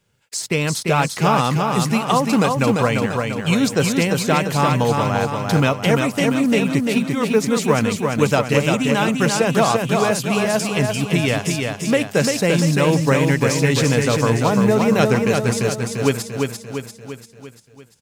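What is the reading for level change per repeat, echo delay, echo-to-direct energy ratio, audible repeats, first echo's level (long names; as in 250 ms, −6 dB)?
−5.5 dB, 344 ms, −2.5 dB, 6, −4.0 dB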